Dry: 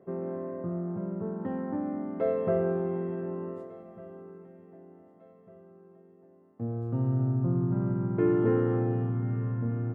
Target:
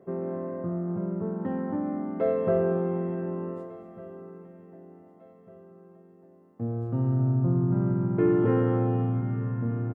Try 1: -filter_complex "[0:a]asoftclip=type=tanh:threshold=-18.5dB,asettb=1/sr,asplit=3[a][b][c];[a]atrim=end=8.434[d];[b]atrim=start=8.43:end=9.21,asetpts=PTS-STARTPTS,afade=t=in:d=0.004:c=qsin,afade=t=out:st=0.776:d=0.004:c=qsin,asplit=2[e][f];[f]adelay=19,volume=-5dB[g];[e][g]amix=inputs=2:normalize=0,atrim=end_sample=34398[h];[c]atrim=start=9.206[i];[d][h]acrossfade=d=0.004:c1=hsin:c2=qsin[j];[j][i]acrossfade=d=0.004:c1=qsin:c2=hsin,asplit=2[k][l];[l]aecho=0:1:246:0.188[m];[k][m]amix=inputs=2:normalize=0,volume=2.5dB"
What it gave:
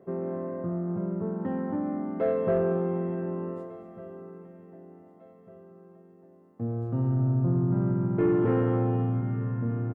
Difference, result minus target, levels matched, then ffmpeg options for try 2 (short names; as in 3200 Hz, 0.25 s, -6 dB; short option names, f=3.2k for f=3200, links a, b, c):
soft clip: distortion +11 dB
-filter_complex "[0:a]asoftclip=type=tanh:threshold=-12dB,asettb=1/sr,asplit=3[a][b][c];[a]atrim=end=8.434[d];[b]atrim=start=8.43:end=9.21,asetpts=PTS-STARTPTS,afade=t=in:d=0.004:c=qsin,afade=t=out:st=0.776:d=0.004:c=qsin,asplit=2[e][f];[f]adelay=19,volume=-5dB[g];[e][g]amix=inputs=2:normalize=0,atrim=end_sample=34398[h];[c]atrim=start=9.206[i];[d][h]acrossfade=d=0.004:c1=hsin:c2=qsin[j];[j][i]acrossfade=d=0.004:c1=qsin:c2=hsin,asplit=2[k][l];[l]aecho=0:1:246:0.188[m];[k][m]amix=inputs=2:normalize=0,volume=2.5dB"